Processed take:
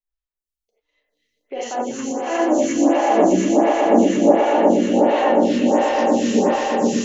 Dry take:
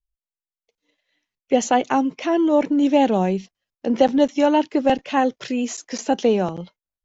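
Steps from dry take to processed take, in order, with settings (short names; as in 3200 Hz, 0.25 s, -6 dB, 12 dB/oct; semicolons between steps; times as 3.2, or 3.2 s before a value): limiter -12 dBFS, peak gain reduction 8 dB; 1.98–4.45 LFO low-pass saw down 3.5 Hz 550–3300 Hz; swelling echo 0.12 s, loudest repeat 8, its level -5 dB; non-linear reverb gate 0.11 s rising, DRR -6.5 dB; photocell phaser 1.4 Hz; gain -6 dB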